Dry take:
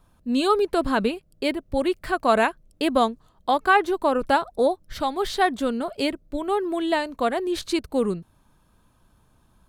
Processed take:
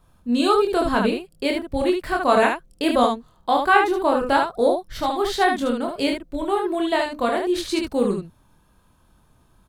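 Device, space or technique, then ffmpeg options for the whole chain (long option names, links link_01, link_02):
slapback doubling: -filter_complex "[0:a]asplit=3[link_01][link_02][link_03];[link_02]adelay=25,volume=-3.5dB[link_04];[link_03]adelay=75,volume=-4.5dB[link_05];[link_01][link_04][link_05]amix=inputs=3:normalize=0"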